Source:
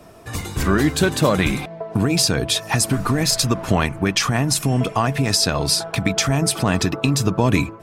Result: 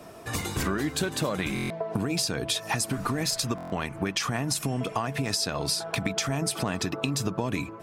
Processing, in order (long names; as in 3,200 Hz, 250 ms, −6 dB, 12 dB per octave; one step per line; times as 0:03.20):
low-shelf EQ 83 Hz −11 dB
downward compressor 6 to 1, threshold −25 dBFS, peak gain reduction 12 dB
buffer that repeats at 0:01.54/0:03.56, samples 1,024, times 6